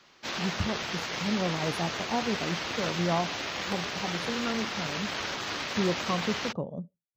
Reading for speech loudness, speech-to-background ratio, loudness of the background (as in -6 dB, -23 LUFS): -33.5 LUFS, -1.0 dB, -32.5 LUFS